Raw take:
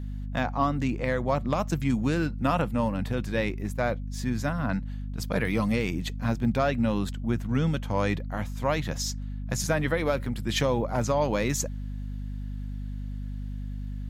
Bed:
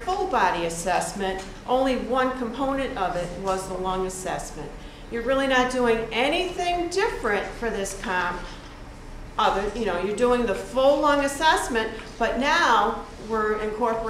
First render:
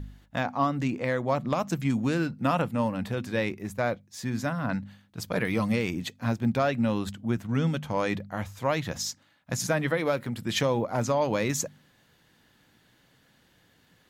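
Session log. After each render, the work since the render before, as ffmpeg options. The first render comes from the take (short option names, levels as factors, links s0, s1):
-af "bandreject=f=50:t=h:w=4,bandreject=f=100:t=h:w=4,bandreject=f=150:t=h:w=4,bandreject=f=200:t=h:w=4,bandreject=f=250:t=h:w=4"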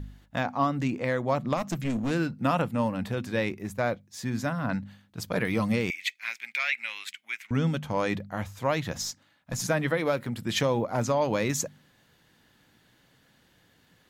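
-filter_complex "[0:a]asettb=1/sr,asplit=3[s0][s1][s2];[s0]atrim=end=1.574[s3];[s1]atrim=start=1.57:end=2.11,asetpts=PTS-STARTPTS,afade=t=in:d=0.004:c=qsin,afade=t=out:st=0.536:d=0.004:c=qsin,aeval=exprs='clip(val(0),-1,0.0398)':c=same[s4];[s2]atrim=start=2.106[s5];[s3][s4]acrossfade=d=0.004:c1=hsin:c2=qsin[s6];[s6][s5]acrossfade=d=0.004:c1=qsin:c2=hsin,asettb=1/sr,asplit=3[s7][s8][s9];[s7]atrim=end=5.904[s10];[s8]atrim=start=5.9:end=7.51,asetpts=PTS-STARTPTS,afade=t=in:d=0.004:c=qsin,afade=t=out:st=1.606:d=0.004:c=qsin,highpass=f=2200:t=q:w=7.7[s11];[s9]atrim=start=7.506[s12];[s10][s11]acrossfade=d=0.004:c1=hsin:c2=qsin[s13];[s13][s12]acrossfade=d=0.004:c1=qsin:c2=hsin,asettb=1/sr,asplit=3[s14][s15][s16];[s14]atrim=end=9.014[s17];[s15]atrim=start=9.01:end=9.62,asetpts=PTS-STARTPTS,afade=t=in:d=0.004:c=qsin,afade=t=out:st=0.606:d=0.004:c=qsin,aeval=exprs='(tanh(12.6*val(0)+0.25)-tanh(0.25))/12.6':c=same[s18];[s16]atrim=start=9.616[s19];[s17][s18]acrossfade=d=0.004:c1=hsin:c2=qsin[s20];[s20][s19]acrossfade=d=0.004:c1=qsin:c2=hsin"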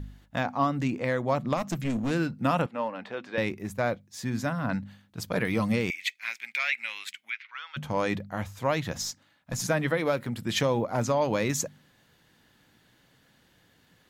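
-filter_complex "[0:a]asettb=1/sr,asplit=3[s0][s1][s2];[s0]atrim=end=2.664[s3];[s1]atrim=start=2.66:end=3.38,asetpts=PTS-STARTPTS,afade=t=in:d=0.004:c=qsin,afade=t=out:st=0.716:d=0.004:c=qsin,highpass=430,lowpass=3300[s4];[s2]atrim=start=3.376[s5];[s3][s4]acrossfade=d=0.004:c1=hsin:c2=qsin[s6];[s6][s5]acrossfade=d=0.004:c1=qsin:c2=hsin,asplit=3[s7][s8][s9];[s7]afade=t=out:st=7.29:d=0.02[s10];[s8]asuperpass=centerf=2200:order=8:qfactor=0.63,afade=t=in:st=7.29:d=0.02,afade=t=out:st=7.76:d=0.02[s11];[s9]afade=t=in:st=7.76:d=0.02[s12];[s10][s11][s12]amix=inputs=3:normalize=0"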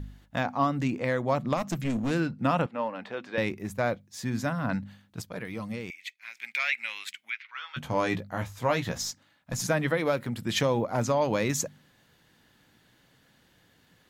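-filter_complex "[0:a]asettb=1/sr,asplit=3[s0][s1][s2];[s0]atrim=end=2.204[s3];[s1]atrim=start=2.2:end=2.91,asetpts=PTS-STARTPTS,afade=t=in:d=0.004:c=qsin,afade=t=out:st=0.706:d=0.004:c=qsin,highshelf=f=8900:g=-11[s4];[s2]atrim=start=2.906[s5];[s3][s4]acrossfade=d=0.004:c1=hsin:c2=qsin[s6];[s6][s5]acrossfade=d=0.004:c1=qsin:c2=hsin,asettb=1/sr,asplit=3[s7][s8][s9];[s7]atrim=end=7.544[s10];[s8]atrim=start=7.54:end=9.01,asetpts=PTS-STARTPTS,afade=t=in:d=0.004:c=qsin,afade=t=out:st=1.466:d=0.004:c=qsin,asplit=2[s11][s12];[s12]adelay=17,volume=0.501[s13];[s11][s13]amix=inputs=2:normalize=0,atrim=end_sample=64827[s14];[s9]atrim=start=9.006[s15];[s10][s14]acrossfade=d=0.004:c1=hsin:c2=qsin[s16];[s16][s15]acrossfade=d=0.004:c1=qsin:c2=hsin,asplit=3[s17][s18][s19];[s17]atrim=end=5.222[s20];[s18]atrim=start=5.218:end=6.372,asetpts=PTS-STARTPTS,volume=0.335[s21];[s19]atrim=start=6.368[s22];[s20][s21]acrossfade=d=0.004:c1=hsin:c2=hsin[s23];[s23][s22]acrossfade=d=0.004:c1=hsin:c2=hsin"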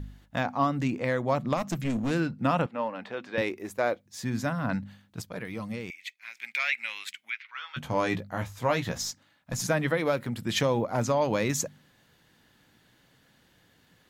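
-filter_complex "[0:a]asettb=1/sr,asplit=3[s0][s1][s2];[s0]atrim=end=3.414[s3];[s1]atrim=start=3.41:end=4.06,asetpts=PTS-STARTPTS,afade=t=in:d=0.004:c=qsin,afade=t=out:st=0.646:d=0.004:c=qsin,lowshelf=f=240:t=q:w=1.5:g=-10.5[s4];[s2]atrim=start=4.056[s5];[s3][s4]acrossfade=d=0.004:c1=hsin:c2=qsin[s6];[s6][s5]acrossfade=d=0.004:c1=qsin:c2=hsin"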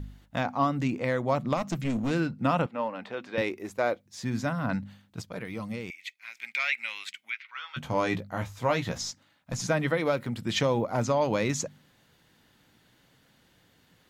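-filter_complex "[0:a]acrossover=split=8000[s0][s1];[s1]acompressor=threshold=0.00126:ratio=4:attack=1:release=60[s2];[s0][s2]amix=inputs=2:normalize=0,bandreject=f=1700:w=21"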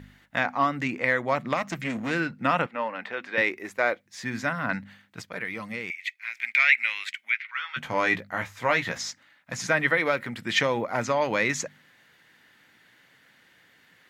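-af "highpass=f=220:p=1,equalizer=f=1900:w=1.4:g=12"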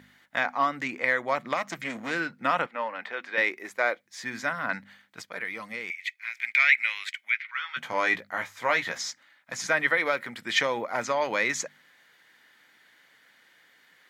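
-af "highpass=f=490:p=1,bandreject=f=2700:w=14"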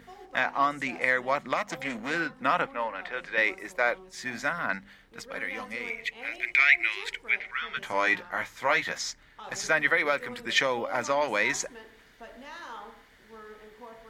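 -filter_complex "[1:a]volume=0.0708[s0];[0:a][s0]amix=inputs=2:normalize=0"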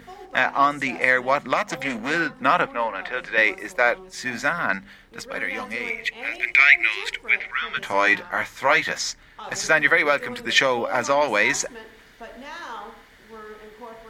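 -af "volume=2.11,alimiter=limit=0.794:level=0:latency=1"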